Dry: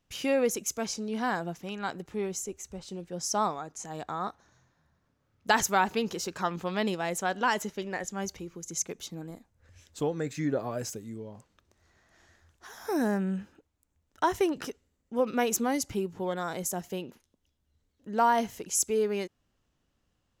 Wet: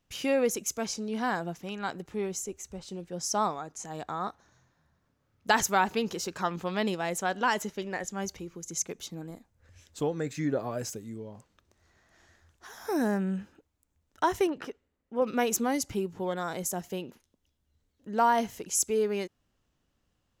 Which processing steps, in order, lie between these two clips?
14.47–15.22 s: tone controls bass -6 dB, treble -14 dB

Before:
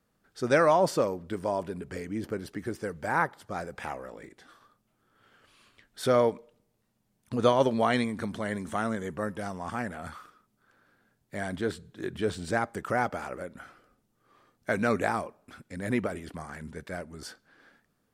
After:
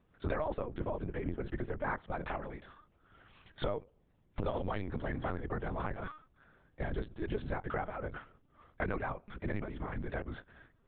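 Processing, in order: octave divider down 2 oct, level +3 dB; distance through air 130 m; granular stretch 0.6×, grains 20 ms; LPC vocoder at 8 kHz pitch kept; compression 5:1, threshold -36 dBFS, peak gain reduction 16.5 dB; trim +3 dB

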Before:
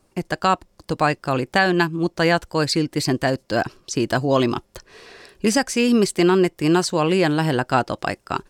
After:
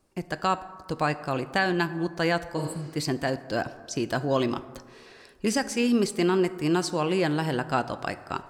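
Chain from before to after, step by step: plate-style reverb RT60 1.6 s, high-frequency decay 0.4×, DRR 12.5 dB; spectral replace 2.60–2.86 s, 200–7500 Hz both; trim -7 dB

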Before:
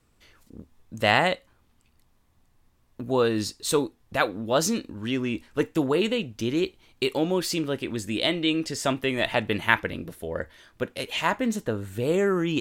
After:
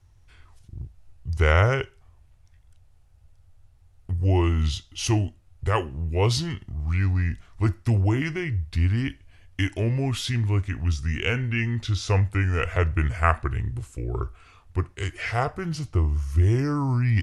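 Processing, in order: resonant low shelf 190 Hz +10.5 dB, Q 3; wide varispeed 0.732×; trim -1.5 dB

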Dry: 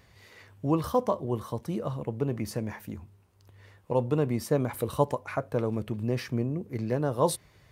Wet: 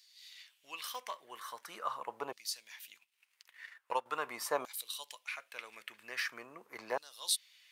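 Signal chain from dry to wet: LFO high-pass saw down 0.43 Hz 890–4500 Hz; 2.95–4.06 s: transient shaper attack +6 dB, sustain -11 dB

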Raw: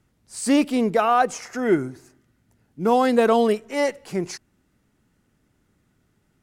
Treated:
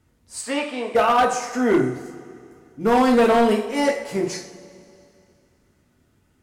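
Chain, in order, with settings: 0.41–0.95 s: band-pass 640–3200 Hz; two-slope reverb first 0.48 s, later 2.6 s, from -18 dB, DRR -0.5 dB; hard clipper -12 dBFS, distortion -12 dB

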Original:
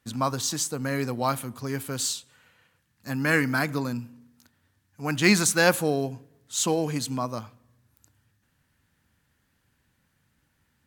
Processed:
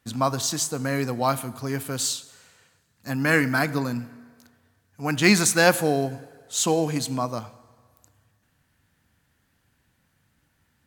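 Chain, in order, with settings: peaking EQ 700 Hz +3.5 dB 0.27 oct; on a send: reverberation RT60 1.8 s, pre-delay 5 ms, DRR 16.5 dB; on the sum: trim +2 dB

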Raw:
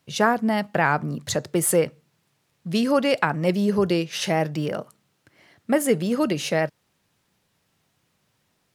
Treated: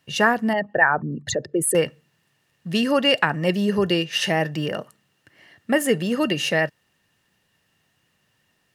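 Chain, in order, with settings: 0.53–1.75 s: resonances exaggerated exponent 2; small resonant body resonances 1.8/2.8 kHz, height 14 dB, ringing for 30 ms

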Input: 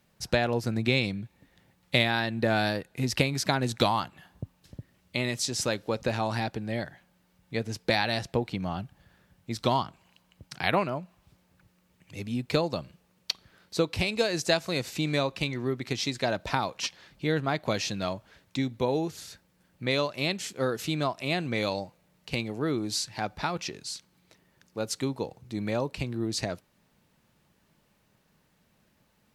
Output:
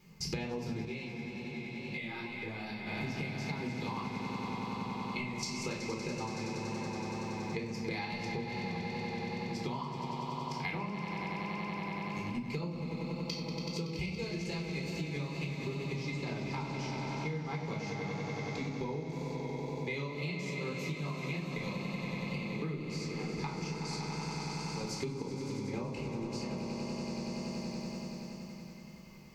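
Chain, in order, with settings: level held to a coarse grid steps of 14 dB; rippled EQ curve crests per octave 0.75, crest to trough 9 dB; echo with a slow build-up 94 ms, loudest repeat 5, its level -10.5 dB; simulated room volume 810 m³, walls furnished, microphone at 4 m; wow and flutter 29 cents; peaking EQ 4.6 kHz +10 dB 0.29 oct; small resonant body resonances 210/2100 Hz, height 14 dB, ringing for 50 ms; compression 16:1, threshold -34 dBFS, peak gain reduction 23 dB; 0.85–2.87 s: detune thickener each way 32 cents

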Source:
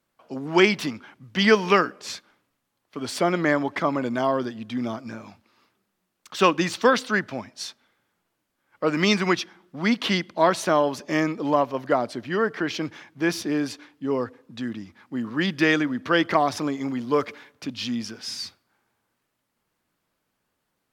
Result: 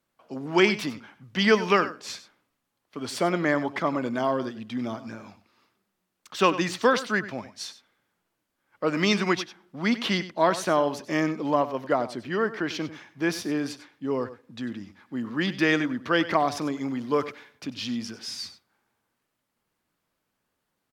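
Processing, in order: delay 96 ms -14.5 dB; trim -2.5 dB

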